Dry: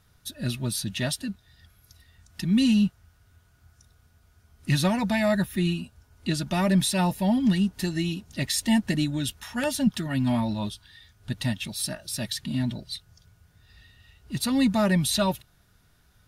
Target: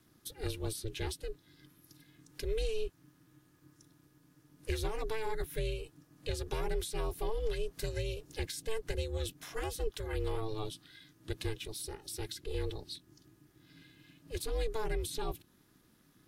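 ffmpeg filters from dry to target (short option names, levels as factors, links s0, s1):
-filter_complex "[0:a]highshelf=f=9500:g=5.5,aeval=exprs='val(0)*sin(2*PI*220*n/s)':c=same,acrossover=split=240|530[s0][s1][s2];[s0]acompressor=threshold=0.0316:ratio=4[s3];[s1]acompressor=threshold=0.00891:ratio=4[s4];[s2]acompressor=threshold=0.0112:ratio=4[s5];[s3][s4][s5]amix=inputs=3:normalize=0,volume=0.75"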